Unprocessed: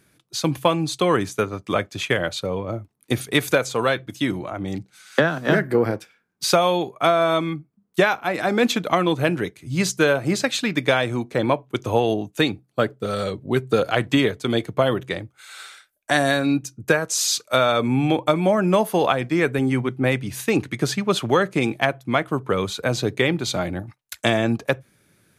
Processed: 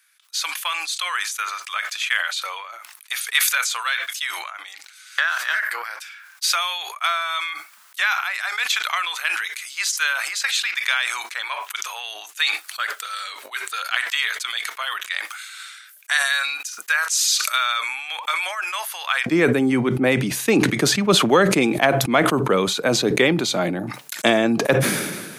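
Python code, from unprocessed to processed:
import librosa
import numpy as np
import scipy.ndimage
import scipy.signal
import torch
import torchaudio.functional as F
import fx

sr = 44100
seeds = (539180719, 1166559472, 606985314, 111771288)

y = fx.highpass(x, sr, hz=fx.steps((0.0, 1300.0), (19.26, 170.0)), slope=24)
y = fx.sustainer(y, sr, db_per_s=38.0)
y = F.gain(torch.from_numpy(y), 2.5).numpy()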